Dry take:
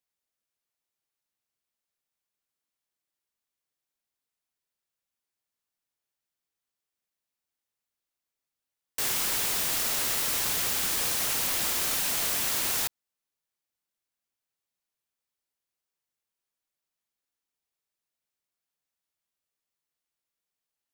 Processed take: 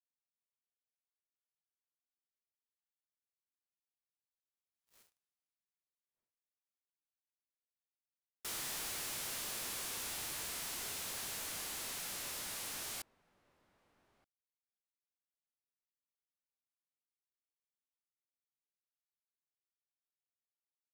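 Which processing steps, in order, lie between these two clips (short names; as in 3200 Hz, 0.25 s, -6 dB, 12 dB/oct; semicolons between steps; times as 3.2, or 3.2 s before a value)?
Doppler pass-by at 4.98, 60 m/s, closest 4.3 m; sample leveller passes 5; outdoor echo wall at 210 m, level -21 dB; formant shift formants -5 st; gain +10 dB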